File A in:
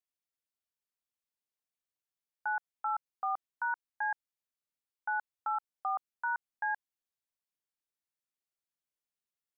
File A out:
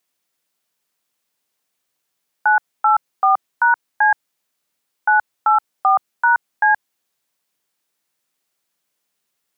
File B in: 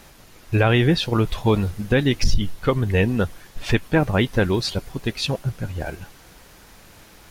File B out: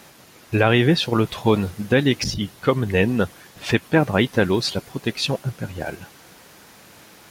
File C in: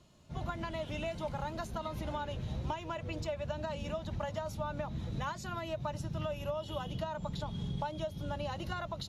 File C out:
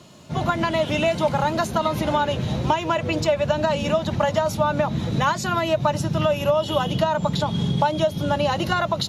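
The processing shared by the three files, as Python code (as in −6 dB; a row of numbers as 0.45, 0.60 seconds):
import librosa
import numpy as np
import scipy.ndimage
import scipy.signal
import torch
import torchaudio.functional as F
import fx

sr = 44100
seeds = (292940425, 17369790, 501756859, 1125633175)

y = scipy.signal.sosfilt(scipy.signal.butter(2, 130.0, 'highpass', fs=sr, output='sos'), x)
y = y * 10.0 ** (-22 / 20.0) / np.sqrt(np.mean(np.square(y)))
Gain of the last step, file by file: +18.5, +2.0, +17.5 decibels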